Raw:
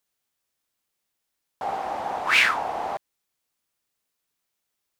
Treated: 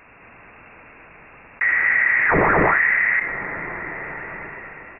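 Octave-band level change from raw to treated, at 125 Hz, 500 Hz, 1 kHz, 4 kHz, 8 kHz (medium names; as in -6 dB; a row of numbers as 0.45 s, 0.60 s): +21.0 dB, +10.0 dB, +4.0 dB, under -20 dB, under -35 dB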